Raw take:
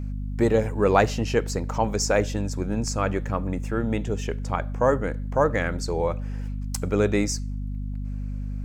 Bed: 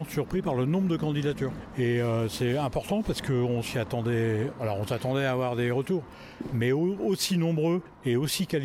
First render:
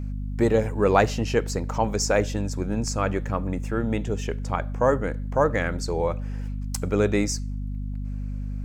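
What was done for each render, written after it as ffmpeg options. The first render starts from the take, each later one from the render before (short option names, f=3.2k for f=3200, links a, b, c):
-af anull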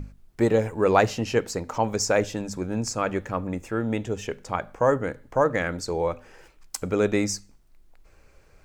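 -af "bandreject=f=50:t=h:w=6,bandreject=f=100:t=h:w=6,bandreject=f=150:t=h:w=6,bandreject=f=200:t=h:w=6,bandreject=f=250:t=h:w=6"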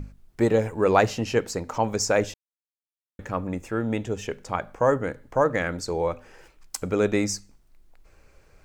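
-filter_complex "[0:a]asplit=3[a][b][c];[a]atrim=end=2.34,asetpts=PTS-STARTPTS,afade=t=out:st=2.336:d=0.004:c=hsin[d];[b]atrim=start=2.34:end=3.19,asetpts=PTS-STARTPTS,volume=0[e];[c]atrim=start=3.19,asetpts=PTS-STARTPTS,afade=t=in:d=0.004:c=hsin[f];[d][e][f]concat=n=3:v=0:a=1"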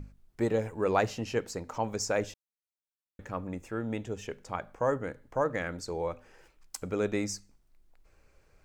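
-af "volume=-7.5dB"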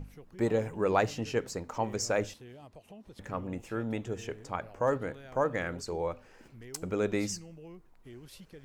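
-filter_complex "[1:a]volume=-23dB[a];[0:a][a]amix=inputs=2:normalize=0"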